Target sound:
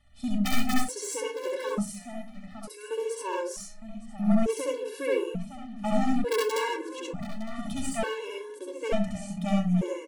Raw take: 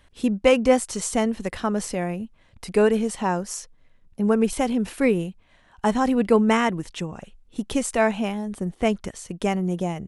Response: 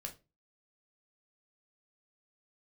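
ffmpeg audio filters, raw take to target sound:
-filter_complex "[0:a]aeval=exprs='(mod(2.24*val(0)+1,2)-1)/2.24':c=same,asettb=1/sr,asplit=3[s0][s1][s2];[s0]atrim=end=1.744[s3];[s1]atrim=start=1.74:end=2.91,asetpts=PTS-STARTPTS,afade=t=in:d=0.004:c=qsin,afade=t=out:st=1.166:d=0.004:c=qsin,aderivative[s4];[s2]atrim=start=2.906[s5];[s3][s4]acrossfade=d=0.004:c1=hsin:c2=qsin[s6];[s6][s5]acrossfade=d=0.004:c1=qsin:c2=hsin,aeval=exprs='clip(val(0),-1,0.0562)':c=same,asplit=2[s7][s8];[s8]adelay=910,lowpass=f=4000:p=1,volume=0.251,asplit=2[s9][s10];[s10]adelay=910,lowpass=f=4000:p=1,volume=0.21,asplit=2[s11][s12];[s12]adelay=910,lowpass=f=4000:p=1,volume=0.21[s13];[s7][s9][s11][s13]amix=inputs=4:normalize=0,asplit=2[s14][s15];[1:a]atrim=start_sample=2205,adelay=67[s16];[s15][s16]afir=irnorm=-1:irlink=0,volume=1.88[s17];[s14][s17]amix=inputs=2:normalize=0,afftfilt=real='re*gt(sin(2*PI*0.56*pts/sr)*(1-2*mod(floor(b*sr/1024/290),2)),0)':imag='im*gt(sin(2*PI*0.56*pts/sr)*(1-2*mod(floor(b*sr/1024/290),2)),0)':win_size=1024:overlap=0.75,volume=0.473"

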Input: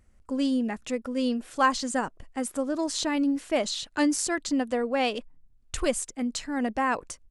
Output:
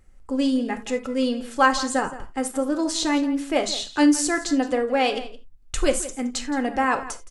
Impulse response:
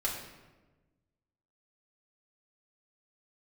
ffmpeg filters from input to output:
-filter_complex "[0:a]asplit=2[s0][s1];[s1]adelay=169.1,volume=0.178,highshelf=f=4000:g=-3.8[s2];[s0][s2]amix=inputs=2:normalize=0,asplit=2[s3][s4];[1:a]atrim=start_sample=2205,afade=t=out:st=0.14:d=0.01,atrim=end_sample=6615[s5];[s4][s5]afir=irnorm=-1:irlink=0,volume=0.501[s6];[s3][s6]amix=inputs=2:normalize=0,volume=1.12"

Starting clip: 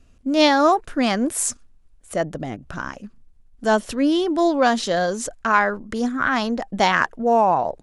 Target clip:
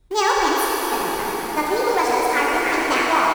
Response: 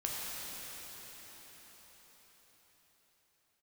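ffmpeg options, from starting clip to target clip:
-filter_complex "[0:a]acrossover=split=180[s0][s1];[s0]acrusher=samples=32:mix=1:aa=0.000001:lfo=1:lforange=51.2:lforate=1.5[s2];[s2][s1]amix=inputs=2:normalize=0,asetrate=26222,aresample=44100,atempo=1.68179,asplit=2[s3][s4];[s4]acrusher=bits=3:mix=0:aa=0.000001,volume=0.282[s5];[s3][s5]amix=inputs=2:normalize=0,aexciter=amount=7:drive=5:freq=8400,asetrate=103194,aresample=44100[s6];[1:a]atrim=start_sample=2205,asetrate=40131,aresample=44100[s7];[s6][s7]afir=irnorm=-1:irlink=0,volume=0.531"

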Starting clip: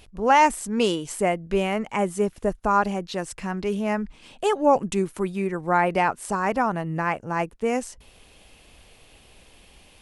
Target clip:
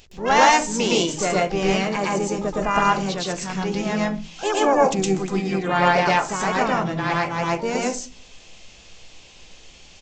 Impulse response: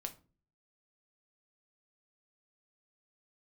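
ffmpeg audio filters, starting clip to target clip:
-filter_complex "[0:a]asplit=4[s0][s1][s2][s3];[s1]asetrate=35002,aresample=44100,atempo=1.25992,volume=0.282[s4];[s2]asetrate=55563,aresample=44100,atempo=0.793701,volume=0.178[s5];[s3]asetrate=88200,aresample=44100,atempo=0.5,volume=0.224[s6];[s0][s4][s5][s6]amix=inputs=4:normalize=0,aresample=16000,aresample=44100,highshelf=f=3700:g=11,asplit=2[s7][s8];[1:a]atrim=start_sample=2205,highshelf=f=7600:g=7.5,adelay=114[s9];[s8][s9]afir=irnorm=-1:irlink=0,volume=1.68[s10];[s7][s10]amix=inputs=2:normalize=0,volume=0.708"

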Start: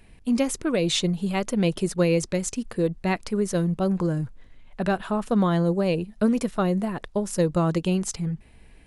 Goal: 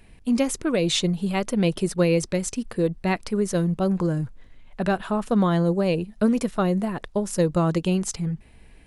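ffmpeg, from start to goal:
-filter_complex "[0:a]asettb=1/sr,asplit=3[s0][s1][s2];[s0]atrim=end=1.154[s3];[s1]atrim=start=1.15:end=3.35,asetpts=PTS-STARTPTS,afade=t=in:d=0.004:c=qsin,afade=t=out:st=2.196:d=0.004:c=qsin,bandreject=f=6800:w=14[s4];[s2]atrim=start=3.346[s5];[s3][s4]acrossfade=d=0.004:c1=hsin:c2=qsin[s6];[s6][s5]acrossfade=d=0.004:c1=qsin:c2=hsin,volume=1.12"

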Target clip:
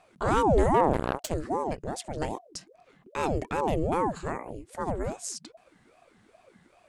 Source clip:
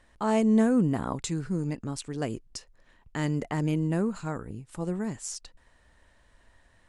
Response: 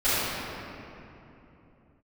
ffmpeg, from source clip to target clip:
-filter_complex "[0:a]asettb=1/sr,asplit=3[s0][s1][s2];[s0]atrim=end=0.744[s3];[s1]atrim=start=0.74:end=1.34,asetpts=PTS-STARTPTS,afade=t=in:d=0.004:c=qsin,afade=t=out:st=0.596:d=0.004:c=qsin,aeval=exprs='0.168*(cos(1*acos(clip(val(0)/0.168,-1,1)))-cos(1*PI/2))+0.0299*(cos(4*acos(clip(val(0)/0.168,-1,1)))-cos(4*PI/2))+0.0168*(cos(7*acos(clip(val(0)/0.168,-1,1)))-cos(7*PI/2))':c=same[s4];[s2]atrim=start=1.336[s5];[s3][s4]acrossfade=d=0.004:c1=hsin:c2=qsin[s6];[s6][s5]acrossfade=d=0.004:c1=qsin:c2=hsin,aeval=exprs='val(0)*sin(2*PI*440*n/s+440*0.65/2.5*sin(2*PI*2.5*n/s))':c=same,volume=1.41"

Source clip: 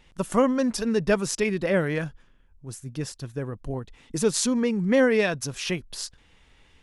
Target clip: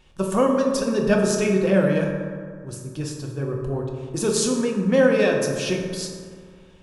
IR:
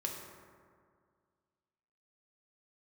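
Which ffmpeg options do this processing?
-filter_complex "[0:a]bandreject=f=2000:w=6.5[s0];[1:a]atrim=start_sample=2205[s1];[s0][s1]afir=irnorm=-1:irlink=0,volume=1.26"

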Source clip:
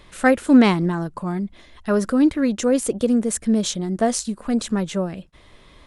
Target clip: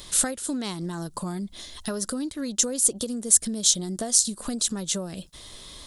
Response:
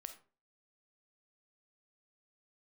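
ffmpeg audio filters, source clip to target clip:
-af "acompressor=threshold=0.0355:ratio=10,aexciter=amount=6.4:drive=4.2:freq=3400,volume=1.12"

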